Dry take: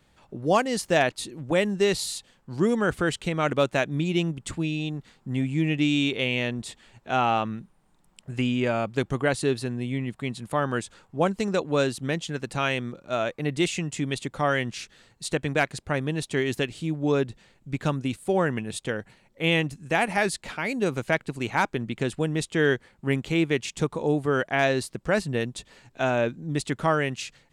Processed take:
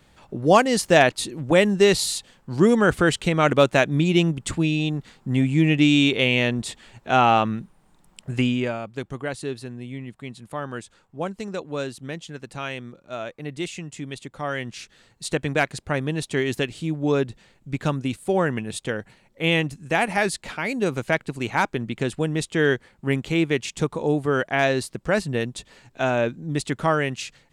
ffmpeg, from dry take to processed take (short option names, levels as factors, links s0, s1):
-af "volume=4.73,afade=t=out:st=8.31:d=0.48:silence=0.266073,afade=t=in:st=14.39:d=0.95:silence=0.421697"